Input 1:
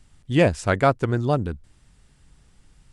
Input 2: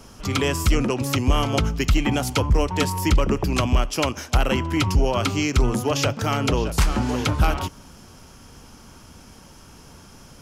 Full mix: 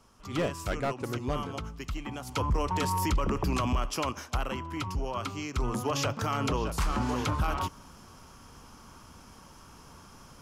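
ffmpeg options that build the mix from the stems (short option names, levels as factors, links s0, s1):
-filter_complex "[0:a]highpass=140,volume=5.31,asoftclip=hard,volume=0.188,volume=0.316[s0];[1:a]equalizer=f=1100:w=2.3:g=8,volume=1.41,afade=t=in:st=2.25:d=0.28:silence=0.237137,afade=t=out:st=3.73:d=0.79:silence=0.334965,afade=t=in:st=5.52:d=0.4:silence=0.421697[s1];[s0][s1]amix=inputs=2:normalize=0,alimiter=limit=0.0944:level=0:latency=1:release=16"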